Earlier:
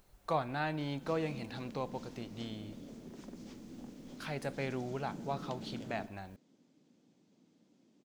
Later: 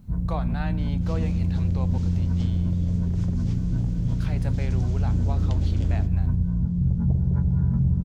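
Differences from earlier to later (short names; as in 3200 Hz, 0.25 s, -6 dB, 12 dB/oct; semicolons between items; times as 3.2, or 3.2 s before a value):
first sound: unmuted; second sound +8.0 dB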